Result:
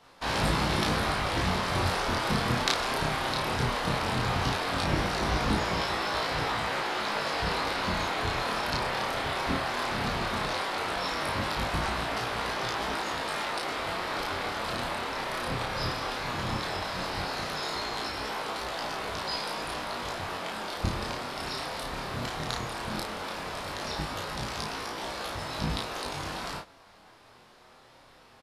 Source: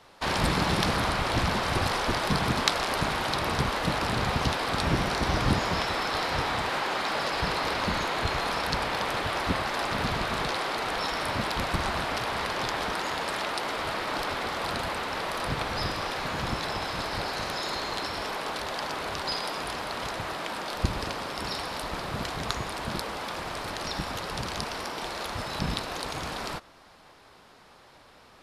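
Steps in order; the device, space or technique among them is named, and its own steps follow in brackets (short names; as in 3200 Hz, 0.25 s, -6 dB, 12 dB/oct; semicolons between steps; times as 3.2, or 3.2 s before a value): double-tracked vocal (doubler 33 ms -3.5 dB; chorus 0.16 Hz, delay 18 ms, depth 7.5 ms)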